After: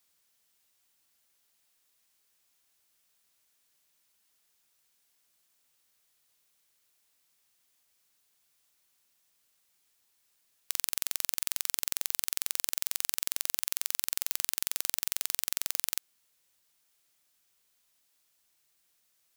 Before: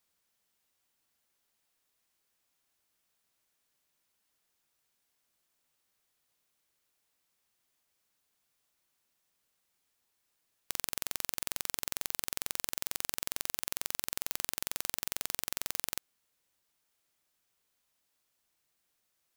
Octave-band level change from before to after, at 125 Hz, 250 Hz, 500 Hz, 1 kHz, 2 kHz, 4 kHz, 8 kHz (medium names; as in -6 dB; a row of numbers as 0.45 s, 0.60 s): no reading, -5.5 dB, -4.5 dB, -2.5 dB, +0.5 dB, +3.5 dB, +4.5 dB